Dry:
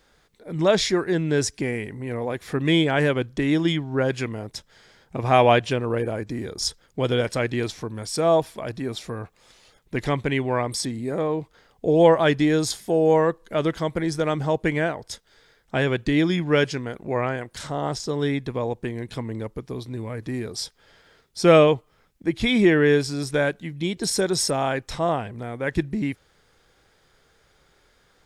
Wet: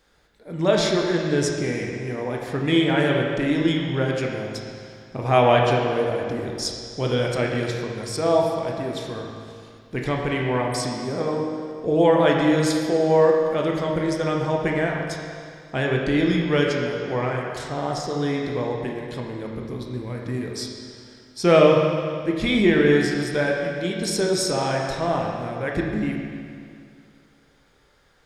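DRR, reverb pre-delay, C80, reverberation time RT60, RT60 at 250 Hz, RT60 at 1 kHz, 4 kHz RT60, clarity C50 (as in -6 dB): -0.5 dB, 19 ms, 3.0 dB, 2.3 s, 2.3 s, 2.3 s, 2.1 s, 1.5 dB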